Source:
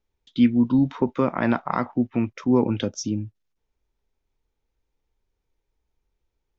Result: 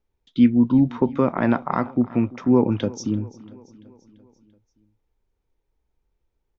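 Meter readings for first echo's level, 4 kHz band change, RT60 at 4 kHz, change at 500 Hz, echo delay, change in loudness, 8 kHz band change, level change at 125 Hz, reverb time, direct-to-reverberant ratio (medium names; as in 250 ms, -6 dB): -20.5 dB, -3.0 dB, no reverb, +2.0 dB, 340 ms, +2.0 dB, no reading, +2.5 dB, no reverb, no reverb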